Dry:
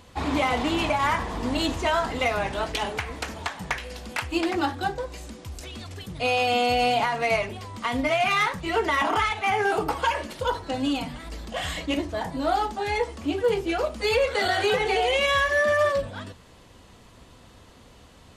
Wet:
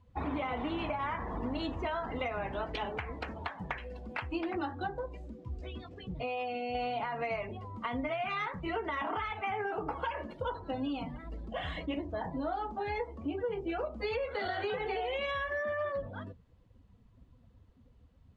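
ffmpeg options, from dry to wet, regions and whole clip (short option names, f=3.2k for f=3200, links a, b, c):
-filter_complex "[0:a]asettb=1/sr,asplit=3[a][b][c];[a]atrim=end=5.454[d];[b]atrim=start=5.45:end=6.75,asetpts=PTS-STARTPTS,afade=t=in:d=0.004:c=qsin,afade=t=out:st=1.296:d=0.004:c=qsin,lowpass=6.6k,acompressor=threshold=-28dB:ratio=6:attack=3.2:release=140:knee=1:detection=peak,asplit=2[e][f];[f]adelay=16,volume=-3dB[g];[e][g]amix=inputs=2:normalize=0,atrim=end_sample=57330[h];[c]atrim=start=6.746[i];[d][h]acrossfade=d=0.004:c1=hsin:c2=qsin[j];[j][i]acrossfade=d=0.004:c1=qsin:c2=hsin,lowpass=f=2.3k:p=1,afftdn=nr=18:nf=-41,acompressor=threshold=-27dB:ratio=6,volume=-4.5dB"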